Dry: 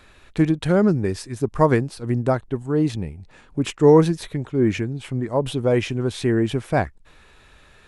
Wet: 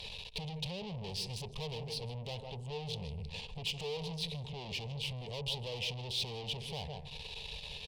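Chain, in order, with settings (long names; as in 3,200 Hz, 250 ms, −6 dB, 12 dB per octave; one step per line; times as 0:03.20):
single-tap delay 154 ms −17 dB
on a send at −16.5 dB: convolution reverb RT60 0.70 s, pre-delay 3 ms
on the sum: downward compressor 3 to 1, threshold −36 dBFS, peak gain reduction 20.5 dB
tube saturation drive 46 dB, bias 0.7
drawn EQ curve 190 Hz 0 dB, 310 Hz −24 dB, 440 Hz +3 dB, 640 Hz −4 dB, 930 Hz +1 dB, 1,400 Hz −27 dB, 2,800 Hz +10 dB, 4,700 Hz +11 dB, 6,900 Hz −3 dB
level +7.5 dB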